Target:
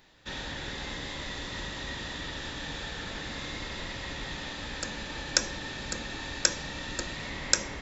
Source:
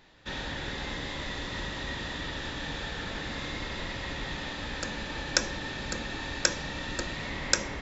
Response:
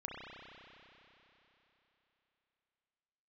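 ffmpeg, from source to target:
-af "highshelf=frequency=6100:gain=9,volume=-2.5dB"

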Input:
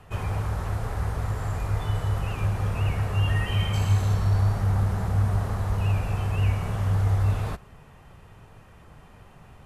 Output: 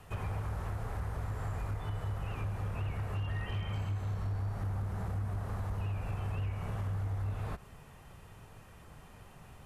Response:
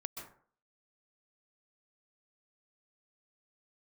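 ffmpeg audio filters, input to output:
-filter_complex "[0:a]acrossover=split=2800[link_01][link_02];[link_02]acompressor=threshold=-58dB:ratio=4:attack=1:release=60[link_03];[link_01][link_03]amix=inputs=2:normalize=0,highshelf=frequency=5000:gain=8,acompressor=threshold=-29dB:ratio=4,asoftclip=type=hard:threshold=-26dB,volume=-4dB"

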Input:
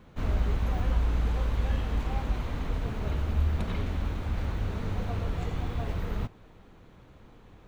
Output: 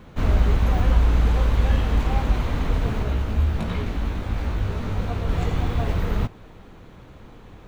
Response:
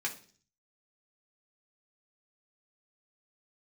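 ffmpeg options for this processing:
-filter_complex "[0:a]asplit=3[link_01][link_02][link_03];[link_01]afade=type=out:start_time=3.02:duration=0.02[link_04];[link_02]flanger=delay=16.5:depth=2.1:speed=2.9,afade=type=in:start_time=3.02:duration=0.02,afade=type=out:start_time=5.28:duration=0.02[link_05];[link_03]afade=type=in:start_time=5.28:duration=0.02[link_06];[link_04][link_05][link_06]amix=inputs=3:normalize=0,volume=8.5dB"

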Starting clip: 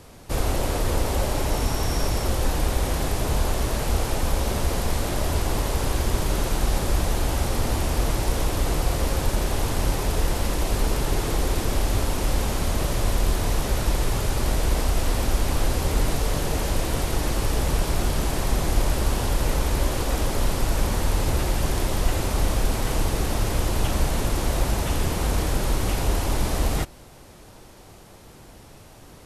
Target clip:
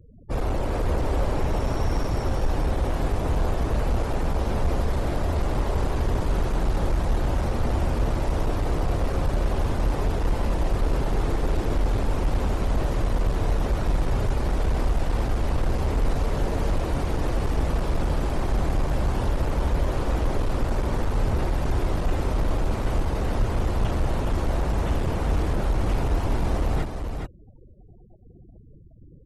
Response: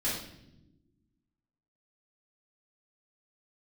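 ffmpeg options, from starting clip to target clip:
-filter_complex "[0:a]afftfilt=real='re*gte(hypot(re,im),0.0178)':imag='im*gte(hypot(re,im),0.0178)':win_size=1024:overlap=0.75,lowpass=12000,highshelf=frequency=2500:gain=-11,volume=19dB,asoftclip=hard,volume=-19dB,asplit=2[link_01][link_02];[link_02]aecho=0:1:419:0.501[link_03];[link_01][link_03]amix=inputs=2:normalize=0"

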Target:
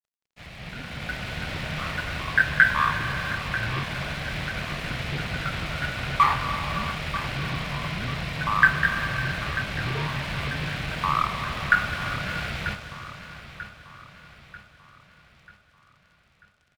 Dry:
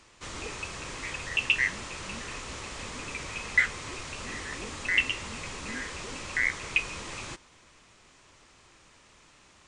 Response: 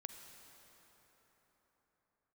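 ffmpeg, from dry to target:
-filter_complex "[0:a]equalizer=frequency=125:width_type=o:width=1:gain=6,equalizer=frequency=250:width_type=o:width=1:gain=11,equalizer=frequency=500:width_type=o:width=1:gain=-6,equalizer=frequency=2000:width_type=o:width=1:gain=-5,equalizer=frequency=4000:width_type=o:width=1:gain=9,equalizer=frequency=8000:width_type=o:width=1:gain=-5[link_01];[1:a]atrim=start_sample=2205,afade=type=out:start_time=0.35:duration=0.01,atrim=end_sample=15876,asetrate=32193,aresample=44100[link_02];[link_01][link_02]afir=irnorm=-1:irlink=0,acrossover=split=1600[link_03][link_04];[link_03]aeval=exprs='0.0211*(abs(mod(val(0)/0.0211+3,4)-2)-1)':channel_layout=same[link_05];[link_05][link_04]amix=inputs=2:normalize=0,highpass=frequency=46:poles=1,asetrate=25442,aresample=44100,aeval=exprs='sgn(val(0))*max(abs(val(0))-0.00299,0)':channel_layout=same,aecho=1:1:940|1880|2820|3760|4700:0.211|0.0993|0.0467|0.0219|0.0103,dynaudnorm=framelen=280:gausssize=7:maxgain=11dB"

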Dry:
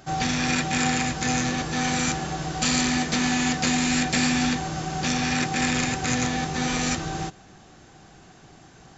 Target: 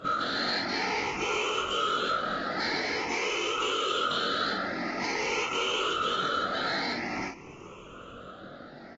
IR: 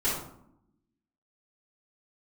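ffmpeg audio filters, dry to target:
-filter_complex "[0:a]afftfilt=real='re*pow(10,19/40*sin(2*PI*(0.75*log(max(b,1)*sr/1024/100)/log(2)-(0.48)*(pts-256)/sr)))':imag='im*pow(10,19/40*sin(2*PI*(0.75*log(max(b,1)*sr/1024/100)/log(2)-(0.48)*(pts-256)/sr)))':win_size=1024:overlap=0.75,highpass=frequency=83:poles=1,equalizer=frequency=5100:width=0.44:gain=-11.5,bandreject=frequency=340.7:width_type=h:width=4,bandreject=frequency=681.4:width_type=h:width=4,bandreject=frequency=1022.1:width_type=h:width=4,bandreject=frequency=1362.8:width_type=h:width=4,bandreject=frequency=1703.5:width_type=h:width=4,acrossover=split=370[link_01][link_02];[link_01]acompressor=threshold=-34dB:ratio=16[link_03];[link_03][link_02]amix=inputs=2:normalize=0,asetrate=76340,aresample=44100,atempo=0.577676,afftfilt=real='hypot(re,im)*cos(2*PI*random(0))':imag='hypot(re,im)*sin(2*PI*random(1))':win_size=512:overlap=0.75,acrossover=split=930|5100[link_04][link_05][link_06];[link_04]acompressor=threshold=-42dB:ratio=4[link_07];[link_05]acompressor=threshold=-34dB:ratio=4[link_08];[link_06]acompressor=threshold=-53dB:ratio=4[link_09];[link_07][link_08][link_09]amix=inputs=3:normalize=0,asoftclip=type=tanh:threshold=-30.5dB,asplit=2[link_10][link_11];[link_11]aecho=0:1:21|47:0.631|0.531[link_12];[link_10][link_12]amix=inputs=2:normalize=0,aresample=16000,aresample=44100,volume=5.5dB" -ar 32000 -c:a aac -b:a 24k

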